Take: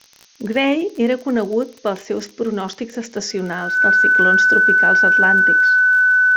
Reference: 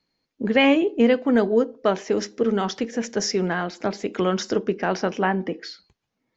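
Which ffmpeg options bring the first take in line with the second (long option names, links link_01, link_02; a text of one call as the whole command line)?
ffmpeg -i in.wav -af "adeclick=threshold=4,bandreject=frequency=1500:width=30,afftdn=noise_reduction=30:noise_floor=-44" out.wav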